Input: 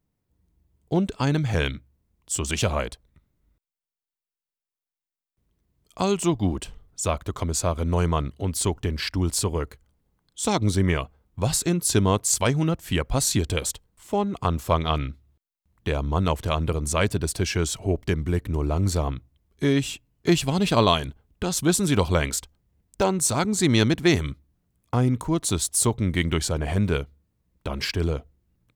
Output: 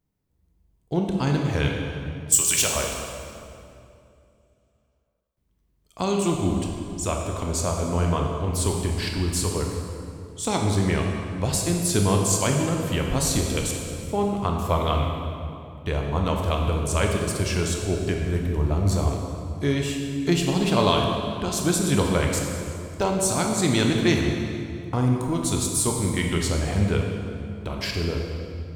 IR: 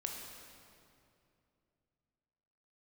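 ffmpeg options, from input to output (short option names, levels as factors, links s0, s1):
-filter_complex "[0:a]asettb=1/sr,asplit=3[s0][s1][s2];[s0]atrim=end=2.324[s3];[s1]atrim=start=2.32:end=2.76,asetpts=PTS-STARTPTS,afade=t=in:d=0.004:c=qsin,afade=t=out:st=0.436:d=0.004:c=qsin,aemphasis=mode=production:type=riaa[s4];[s2]atrim=start=2.756[s5];[s3][s4]acrossfade=d=0.004:c1=hsin:c2=qsin[s6];[s6][s5]acrossfade=d=0.004:c1=qsin:c2=hsin[s7];[1:a]atrim=start_sample=2205[s8];[s7][s8]afir=irnorm=-1:irlink=0"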